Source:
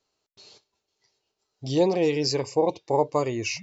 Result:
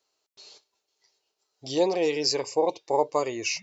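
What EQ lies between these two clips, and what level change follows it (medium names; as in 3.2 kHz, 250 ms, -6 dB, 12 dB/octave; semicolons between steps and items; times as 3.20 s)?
tone controls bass -14 dB, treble +3 dB; 0.0 dB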